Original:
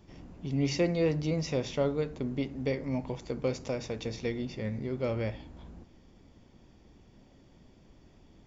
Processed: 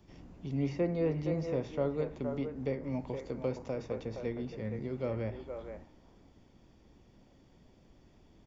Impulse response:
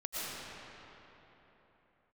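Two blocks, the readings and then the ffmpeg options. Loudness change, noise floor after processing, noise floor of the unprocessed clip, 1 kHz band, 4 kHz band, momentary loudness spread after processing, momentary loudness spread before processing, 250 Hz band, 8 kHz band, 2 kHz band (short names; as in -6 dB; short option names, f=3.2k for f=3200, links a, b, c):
-3.5 dB, -62 dBFS, -59 dBFS, -2.5 dB, -13.5 dB, 11 LU, 12 LU, -3.5 dB, n/a, -7.5 dB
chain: -filter_complex "[0:a]acrossover=split=290|1900[a][b][c];[b]aecho=1:1:469:0.562[d];[c]acompressor=threshold=-55dB:ratio=6[e];[a][d][e]amix=inputs=3:normalize=0,volume=-3.5dB"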